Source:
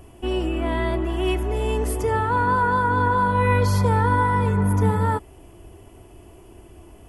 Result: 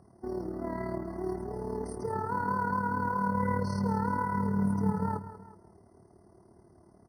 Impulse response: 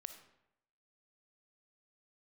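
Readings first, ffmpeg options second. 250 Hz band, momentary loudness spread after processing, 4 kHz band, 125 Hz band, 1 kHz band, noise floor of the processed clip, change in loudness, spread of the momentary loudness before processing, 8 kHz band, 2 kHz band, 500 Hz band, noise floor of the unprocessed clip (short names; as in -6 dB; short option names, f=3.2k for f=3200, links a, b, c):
-5.5 dB, 8 LU, -21.0 dB, -13.0 dB, -10.5 dB, -60 dBFS, -10.5 dB, 5 LU, under -15 dB, -13.5 dB, -11.5 dB, -47 dBFS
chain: -filter_complex "[0:a]asplit=2[a][b];[b]aecho=0:1:188:0.224[c];[a][c]amix=inputs=2:normalize=0,tremolo=f=37:d=0.621,highpass=180,equalizer=f=190:t=q:w=4:g=4,equalizer=f=300:t=q:w=4:g=-8,equalizer=f=480:t=q:w=4:g=-4,equalizer=f=1.8k:t=q:w=4:g=-9,equalizer=f=3.9k:t=q:w=4:g=-5,equalizer=f=7.1k:t=q:w=4:g=-4,lowpass=f=9.6k:w=0.5412,lowpass=f=9.6k:w=1.3066,asplit=2[d][e];[e]aecho=0:1:373:0.106[f];[d][f]amix=inputs=2:normalize=0,acrusher=bits=8:mode=log:mix=0:aa=0.000001,lowshelf=f=290:g=9,afftfilt=real='re*eq(mod(floor(b*sr/1024/2100),2),0)':imag='im*eq(mod(floor(b*sr/1024/2100),2),0)':win_size=1024:overlap=0.75,volume=-8dB"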